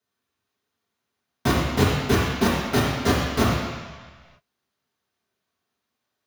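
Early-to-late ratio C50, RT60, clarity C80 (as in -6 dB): -0.5 dB, 1.5 s, 2.0 dB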